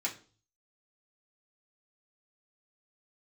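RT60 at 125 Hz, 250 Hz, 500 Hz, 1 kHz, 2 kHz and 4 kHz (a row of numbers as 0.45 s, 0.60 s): 0.75 s, 0.45 s, 0.45 s, 0.35 s, 0.35 s, 0.40 s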